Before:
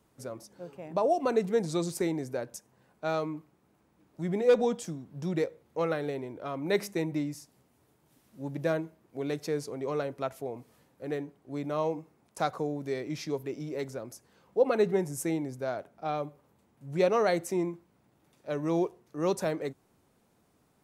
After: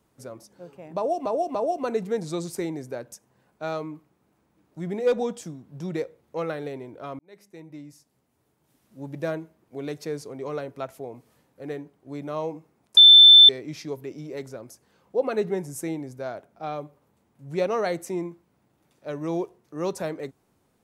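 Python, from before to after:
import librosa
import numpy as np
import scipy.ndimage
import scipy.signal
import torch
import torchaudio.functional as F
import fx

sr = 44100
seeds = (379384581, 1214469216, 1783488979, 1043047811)

y = fx.edit(x, sr, fx.repeat(start_s=0.97, length_s=0.29, count=3),
    fx.fade_in_span(start_s=6.61, length_s=1.87),
    fx.bleep(start_s=12.39, length_s=0.52, hz=3540.0, db=-7.0), tone=tone)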